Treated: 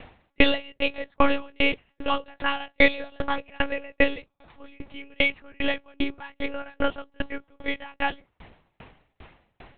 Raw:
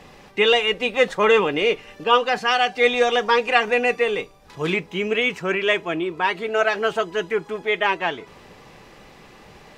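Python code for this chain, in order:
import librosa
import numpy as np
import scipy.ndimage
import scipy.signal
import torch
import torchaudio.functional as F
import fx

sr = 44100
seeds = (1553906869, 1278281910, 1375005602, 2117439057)

y = fx.lpc_monotone(x, sr, seeds[0], pitch_hz=280.0, order=8)
y = fx.tremolo_decay(y, sr, direction='decaying', hz=2.5, depth_db=38)
y = y * librosa.db_to_amplitude(4.0)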